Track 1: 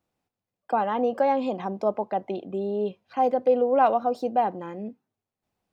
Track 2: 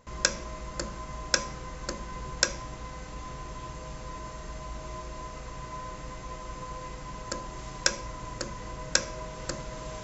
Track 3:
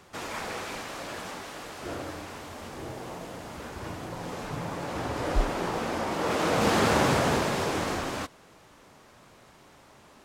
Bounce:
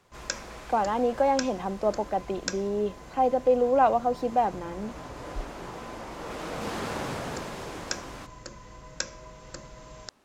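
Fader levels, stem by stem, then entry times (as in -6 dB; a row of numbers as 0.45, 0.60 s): -1.0, -7.5, -10.0 dB; 0.00, 0.05, 0.00 s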